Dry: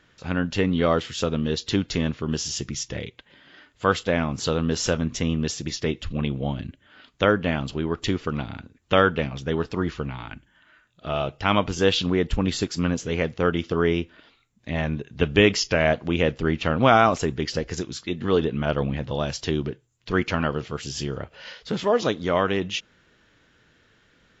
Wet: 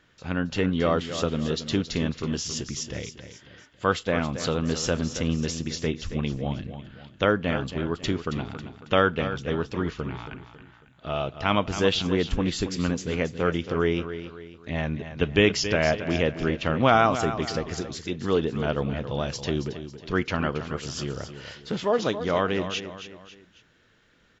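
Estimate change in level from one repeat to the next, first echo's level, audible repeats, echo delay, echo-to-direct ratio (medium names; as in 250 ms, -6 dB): -7.5 dB, -11.0 dB, 3, 274 ms, -10.0 dB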